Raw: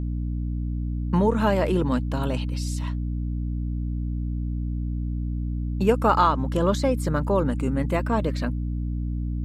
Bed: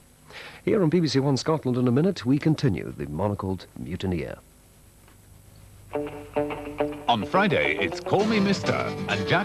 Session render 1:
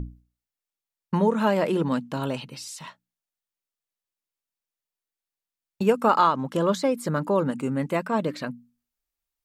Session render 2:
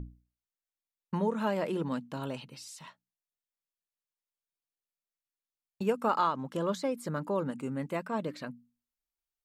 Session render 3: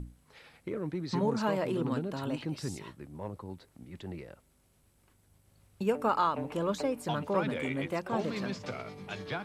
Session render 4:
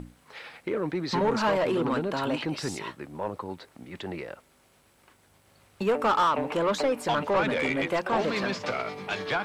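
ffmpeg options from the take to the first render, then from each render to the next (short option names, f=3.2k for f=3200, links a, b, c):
-af "bandreject=f=60:t=h:w=6,bandreject=f=120:t=h:w=6,bandreject=f=180:t=h:w=6,bandreject=f=240:t=h:w=6,bandreject=f=300:t=h:w=6"
-af "volume=-8.5dB"
-filter_complex "[1:a]volume=-14.5dB[a];[0:a][a]amix=inputs=2:normalize=0"
-filter_complex "[0:a]asplit=2[a][b];[b]highpass=f=720:p=1,volume=20dB,asoftclip=type=tanh:threshold=-15dB[c];[a][c]amix=inputs=2:normalize=0,lowpass=f=3k:p=1,volume=-6dB,acrusher=bits=11:mix=0:aa=0.000001"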